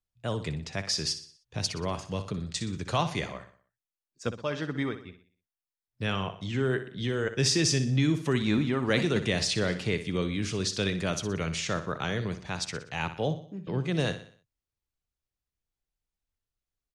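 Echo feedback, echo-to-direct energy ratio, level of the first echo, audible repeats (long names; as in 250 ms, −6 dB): 45%, −10.5 dB, −11.5 dB, 4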